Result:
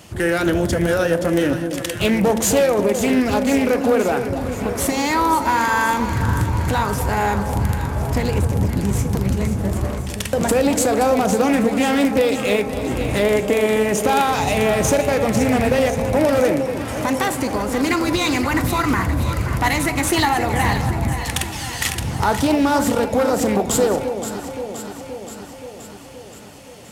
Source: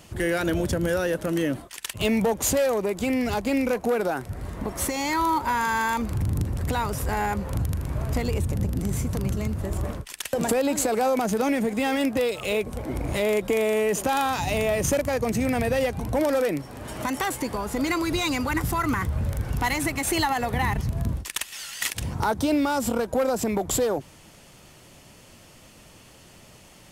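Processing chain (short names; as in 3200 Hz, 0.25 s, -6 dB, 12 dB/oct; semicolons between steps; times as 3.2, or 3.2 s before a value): HPF 54 Hz; echo with dull and thin repeats by turns 0.262 s, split 860 Hz, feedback 80%, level -8 dB; on a send at -10.5 dB: reverb RT60 0.70 s, pre-delay 8 ms; on the sum: Doppler distortion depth 0.24 ms; gain +5.5 dB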